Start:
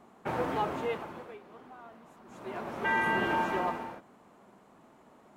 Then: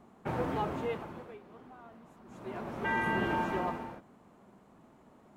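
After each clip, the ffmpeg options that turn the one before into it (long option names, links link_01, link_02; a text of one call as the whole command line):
ffmpeg -i in.wav -af "lowshelf=frequency=240:gain=10,volume=-4dB" out.wav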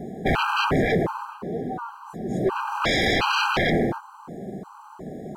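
ffmpeg -i in.wav -af "equalizer=frequency=160:width_type=o:width=0.67:gain=8,equalizer=frequency=400:width_type=o:width=0.67:gain=7,equalizer=frequency=1000:width_type=o:width=0.67:gain=4,equalizer=frequency=2500:width_type=o:width=0.67:gain=-9,aeval=exprs='0.168*sin(PI/2*6.31*val(0)/0.168)':channel_layout=same,afftfilt=real='re*gt(sin(2*PI*1.4*pts/sr)*(1-2*mod(floor(b*sr/1024/800),2)),0)':imag='im*gt(sin(2*PI*1.4*pts/sr)*(1-2*mod(floor(b*sr/1024/800),2)),0)':win_size=1024:overlap=0.75" out.wav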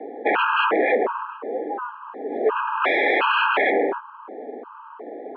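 ffmpeg -i in.wav -af "highpass=frequency=280:width_type=q:width=0.5412,highpass=frequency=280:width_type=q:width=1.307,lowpass=frequency=2800:width_type=q:width=0.5176,lowpass=frequency=2800:width_type=q:width=0.7071,lowpass=frequency=2800:width_type=q:width=1.932,afreqshift=54,volume=3.5dB" out.wav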